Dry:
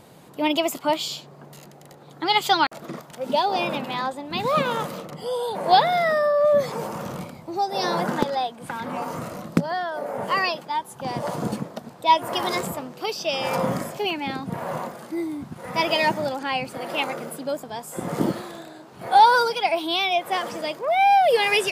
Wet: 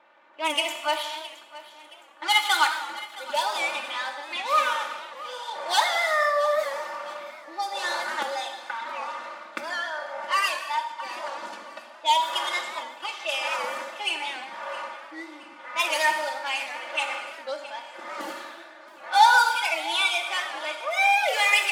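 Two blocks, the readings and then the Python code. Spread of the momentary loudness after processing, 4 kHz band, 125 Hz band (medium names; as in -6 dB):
17 LU, +0.5 dB, under -35 dB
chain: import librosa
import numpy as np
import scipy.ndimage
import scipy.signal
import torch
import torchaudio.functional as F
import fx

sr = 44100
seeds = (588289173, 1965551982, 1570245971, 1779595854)

p1 = scipy.signal.medfilt(x, 9)
p2 = fx.env_lowpass(p1, sr, base_hz=2100.0, full_db=-18.5)
p3 = scipy.signal.sosfilt(scipy.signal.butter(2, 1200.0, 'highpass', fs=sr, output='sos'), p2)
p4 = p3 + 0.92 * np.pad(p3, (int(3.4 * sr / 1000.0), 0))[:len(p3)]
p5 = p4 + fx.echo_feedback(p4, sr, ms=669, feedback_pct=44, wet_db=-17.5, dry=0)
p6 = fx.rev_gated(p5, sr, seeds[0], gate_ms=390, shape='falling', drr_db=4.0)
y = fx.record_warp(p6, sr, rpm=78.0, depth_cents=100.0)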